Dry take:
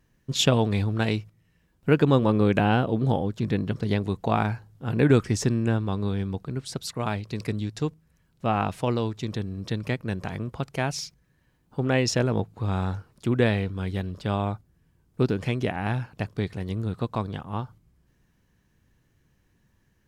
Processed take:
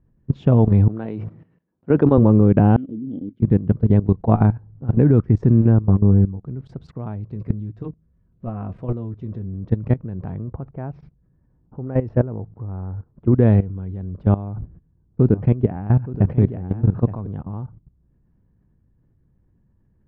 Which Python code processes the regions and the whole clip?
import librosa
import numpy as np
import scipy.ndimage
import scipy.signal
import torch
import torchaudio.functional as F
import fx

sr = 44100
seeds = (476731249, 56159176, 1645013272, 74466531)

y = fx.chain(x, sr, fx.highpass(hz=180.0, slope=12),
    fx.low_shelf(hz=230.0, db=-6.5),
    fx.sustainer(db_per_s=93.0), at=(0.88, 2.18))
y = fx.chain(y, sr, fx.vowel_filter(vowel='i'),
    fx.high_shelf(hz=4100.0, db=11.0), at=(2.76, 3.42))
y = fx.chain(y, sr, fx.lowpass(hz=1500.0, slope=12),
    fx.doubler(ms=20.0, db=-3.5),
    fx.upward_expand(threshold_db=-38.0, expansion=1.5), at=(5.82, 6.43))
y = fx.chain(y, sr, fx.notch(hz=840.0, q=6.9),
    fx.notch_comb(f0_hz=150.0), at=(7.35, 9.54))
y = fx.chain(y, sr, fx.lowpass(hz=1900.0, slope=12),
    fx.dynamic_eq(hz=170.0, q=0.92, threshold_db=-36.0, ratio=4.0, max_db=-4), at=(10.44, 13.33))
y = fx.chain(y, sr, fx.air_absorb(metres=91.0),
    fx.echo_single(ms=872, db=-6.5),
    fx.sustainer(db_per_s=110.0), at=(14.47, 17.27))
y = scipy.signal.sosfilt(scipy.signal.butter(2, 1100.0, 'lowpass', fs=sr, output='sos'), y)
y = fx.low_shelf(y, sr, hz=370.0, db=12.0)
y = fx.level_steps(y, sr, step_db=16)
y = y * 10.0 ** (3.5 / 20.0)